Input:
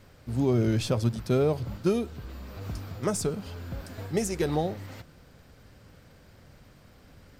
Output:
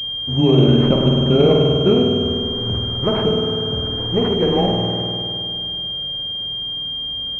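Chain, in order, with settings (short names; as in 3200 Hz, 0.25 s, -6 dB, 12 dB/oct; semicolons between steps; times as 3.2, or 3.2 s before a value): spring tank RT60 2.6 s, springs 50 ms, chirp 45 ms, DRR -1 dB; frequency shift +16 Hz; pulse-width modulation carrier 3200 Hz; gain +8 dB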